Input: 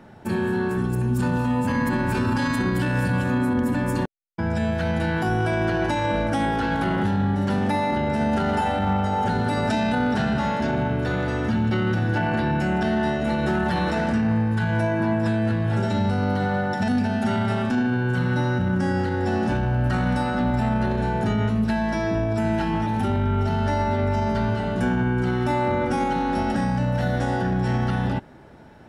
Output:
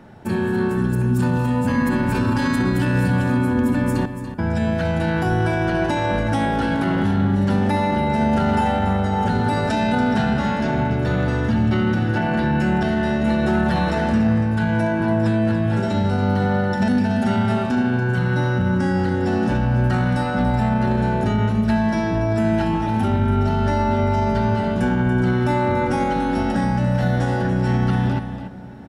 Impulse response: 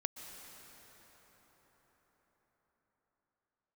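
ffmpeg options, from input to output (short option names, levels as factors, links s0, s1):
-filter_complex "[0:a]aecho=1:1:286:0.299,asplit=2[s0][s1];[1:a]atrim=start_sample=2205,lowshelf=f=380:g=10[s2];[s1][s2]afir=irnorm=-1:irlink=0,volume=0.211[s3];[s0][s3]amix=inputs=2:normalize=0"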